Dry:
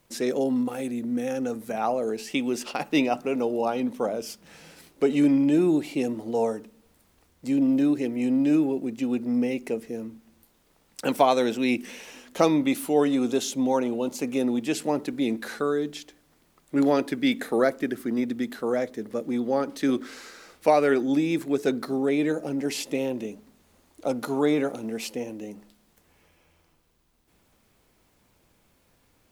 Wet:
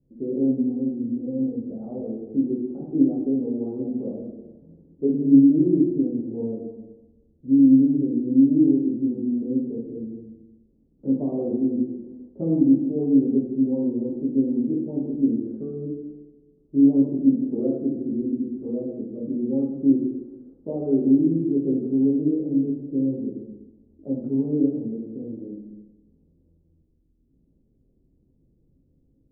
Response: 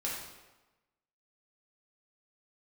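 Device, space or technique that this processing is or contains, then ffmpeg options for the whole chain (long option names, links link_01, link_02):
next room: -filter_complex "[0:a]lowpass=frequency=360:width=0.5412,lowpass=frequency=360:width=1.3066[link_01];[1:a]atrim=start_sample=2205[link_02];[link_01][link_02]afir=irnorm=-1:irlink=0,volume=1dB"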